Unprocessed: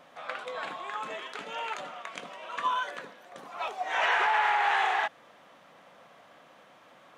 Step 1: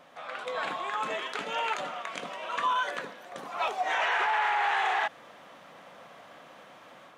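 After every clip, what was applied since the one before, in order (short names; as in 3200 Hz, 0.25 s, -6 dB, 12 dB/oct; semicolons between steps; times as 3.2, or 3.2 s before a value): limiter -24.5 dBFS, peak gain reduction 8 dB; AGC gain up to 5 dB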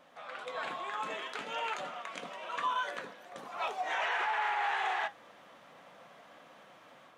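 flange 0.47 Hz, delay 3.4 ms, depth 7.2 ms, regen -65%; gain -1 dB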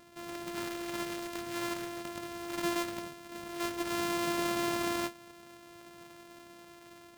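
sample sorter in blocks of 128 samples; in parallel at -6.5 dB: wrapped overs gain 37.5 dB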